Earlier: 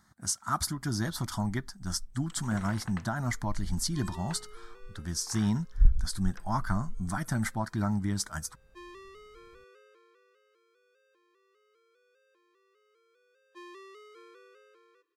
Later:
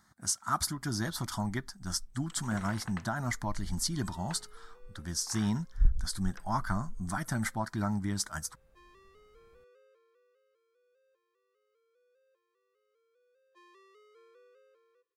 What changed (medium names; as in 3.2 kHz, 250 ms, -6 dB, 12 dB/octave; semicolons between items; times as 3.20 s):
second sound: add ladder high-pass 460 Hz, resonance 65%; master: add bass shelf 260 Hz -4 dB